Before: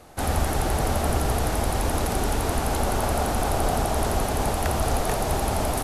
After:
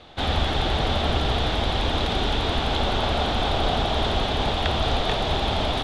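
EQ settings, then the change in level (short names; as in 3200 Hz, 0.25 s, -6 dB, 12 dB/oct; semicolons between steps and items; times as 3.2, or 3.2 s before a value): synth low-pass 3500 Hz, resonance Q 5.9; 0.0 dB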